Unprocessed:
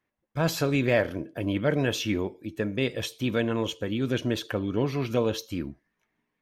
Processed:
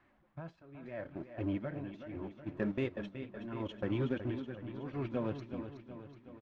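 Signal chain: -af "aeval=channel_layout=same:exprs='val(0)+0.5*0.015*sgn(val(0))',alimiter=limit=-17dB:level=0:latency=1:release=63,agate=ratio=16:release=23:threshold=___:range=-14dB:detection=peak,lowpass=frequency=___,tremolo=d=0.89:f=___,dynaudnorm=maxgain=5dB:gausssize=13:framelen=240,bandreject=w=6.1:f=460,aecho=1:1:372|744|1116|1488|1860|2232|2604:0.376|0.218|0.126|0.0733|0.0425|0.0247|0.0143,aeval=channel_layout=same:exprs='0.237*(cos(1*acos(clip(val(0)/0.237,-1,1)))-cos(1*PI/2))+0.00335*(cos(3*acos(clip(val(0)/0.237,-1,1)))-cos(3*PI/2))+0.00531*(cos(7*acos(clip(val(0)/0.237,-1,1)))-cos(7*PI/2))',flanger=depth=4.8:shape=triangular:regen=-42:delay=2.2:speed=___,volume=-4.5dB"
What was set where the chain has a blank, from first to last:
-34dB, 1900, 0.76, 1.4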